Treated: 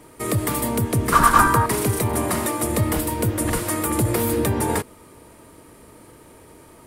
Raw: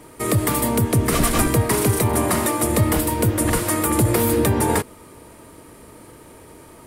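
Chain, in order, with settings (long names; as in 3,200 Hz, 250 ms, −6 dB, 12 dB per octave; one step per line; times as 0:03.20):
0:01.12–0:01.66: flat-topped bell 1,200 Hz +15.5 dB 1.1 octaves
level −3 dB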